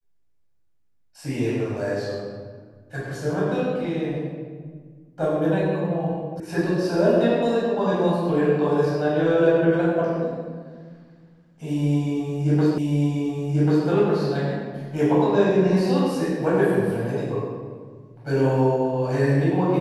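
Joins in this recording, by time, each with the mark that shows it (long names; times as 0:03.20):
0:06.40: cut off before it has died away
0:12.78: the same again, the last 1.09 s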